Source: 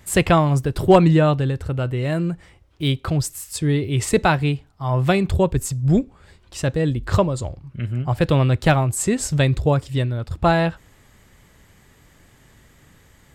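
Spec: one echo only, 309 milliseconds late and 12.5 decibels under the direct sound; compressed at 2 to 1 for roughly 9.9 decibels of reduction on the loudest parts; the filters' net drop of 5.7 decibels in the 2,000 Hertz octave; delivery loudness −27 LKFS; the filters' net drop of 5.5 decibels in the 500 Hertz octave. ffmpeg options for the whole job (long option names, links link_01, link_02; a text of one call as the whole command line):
ffmpeg -i in.wav -af "equalizer=frequency=500:width_type=o:gain=-7,equalizer=frequency=2000:width_type=o:gain=-7.5,acompressor=threshold=-31dB:ratio=2,aecho=1:1:309:0.237,volume=2.5dB" out.wav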